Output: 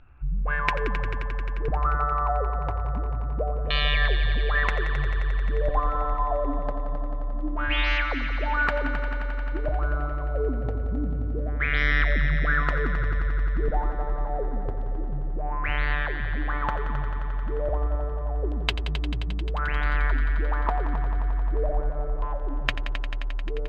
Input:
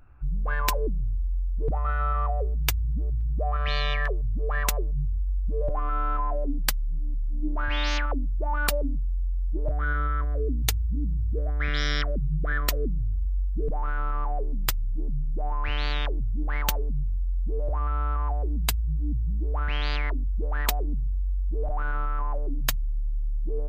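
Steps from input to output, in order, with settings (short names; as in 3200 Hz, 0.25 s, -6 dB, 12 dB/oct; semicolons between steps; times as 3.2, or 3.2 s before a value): LFO low-pass saw down 0.27 Hz 430–3300 Hz; multi-head echo 88 ms, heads all three, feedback 75%, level -14 dB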